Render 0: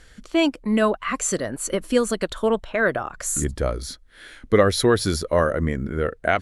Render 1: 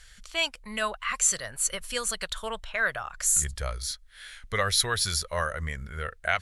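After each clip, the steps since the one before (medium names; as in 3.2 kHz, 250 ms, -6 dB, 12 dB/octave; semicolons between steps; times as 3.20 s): amplifier tone stack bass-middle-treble 10-0-10; trim +3 dB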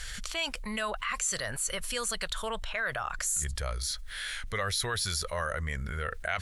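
level flattener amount 70%; trim -9 dB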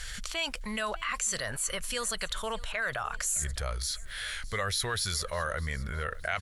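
feedback delay 610 ms, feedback 38%, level -20.5 dB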